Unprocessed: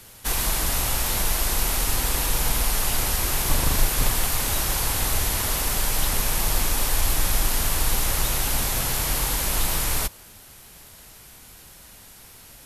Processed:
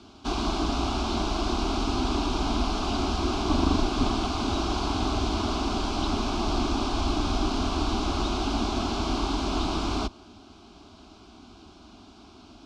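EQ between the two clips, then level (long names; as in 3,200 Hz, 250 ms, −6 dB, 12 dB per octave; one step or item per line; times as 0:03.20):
loudspeaker in its box 180–5,100 Hz, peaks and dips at 190 Hz −7 dB, 530 Hz −6 dB, 900 Hz −8 dB
spectral tilt −3.5 dB per octave
phaser with its sweep stopped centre 500 Hz, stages 6
+7.0 dB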